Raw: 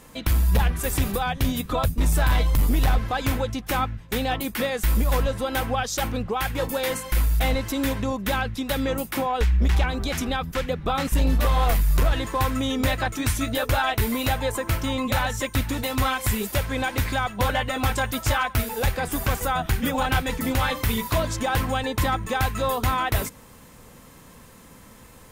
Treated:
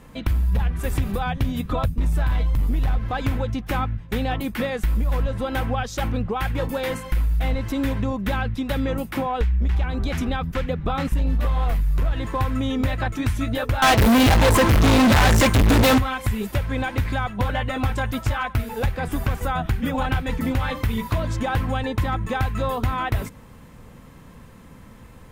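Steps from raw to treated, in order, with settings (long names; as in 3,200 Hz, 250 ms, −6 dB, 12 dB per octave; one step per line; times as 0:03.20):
bass and treble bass +6 dB, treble −9 dB
downward compressor, threshold −18 dBFS, peak gain reduction 7.5 dB
0:13.82–0:15.98: fuzz pedal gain 35 dB, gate −44 dBFS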